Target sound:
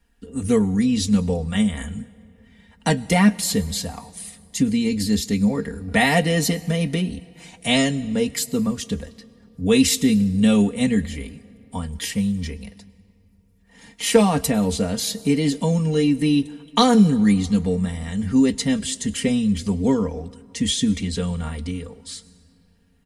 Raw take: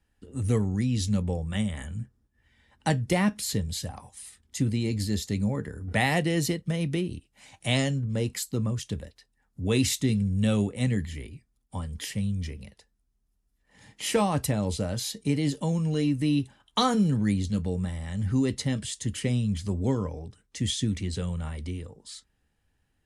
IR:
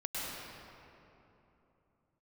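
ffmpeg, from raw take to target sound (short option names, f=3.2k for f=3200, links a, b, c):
-filter_complex "[0:a]aecho=1:1:4.3:0.82,asplit=2[a][b];[1:a]atrim=start_sample=2205,highshelf=f=6.5k:g=11.5[c];[b][c]afir=irnorm=-1:irlink=0,volume=-25dB[d];[a][d]amix=inputs=2:normalize=0,volume=5dB"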